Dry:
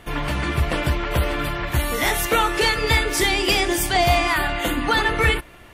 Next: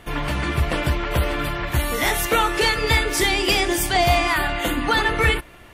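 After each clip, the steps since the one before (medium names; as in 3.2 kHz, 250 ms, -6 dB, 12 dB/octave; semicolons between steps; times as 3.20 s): no audible change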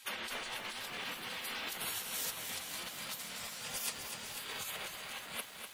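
compressor with a negative ratio -28 dBFS, ratio -1; spectral gate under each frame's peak -20 dB weak; bit-crushed delay 247 ms, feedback 80%, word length 9-bit, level -7 dB; trim -4 dB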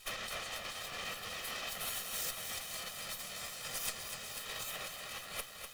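comb filter that takes the minimum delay 1.6 ms; trim +1.5 dB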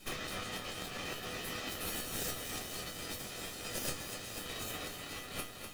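chord resonator E2 fifth, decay 0.22 s; in parallel at -4 dB: sample-and-hold 39×; on the sum: trim +8.5 dB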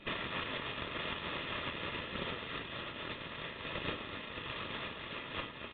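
full-wave rectifier; comb of notches 760 Hz; resampled via 8 kHz; trim +9 dB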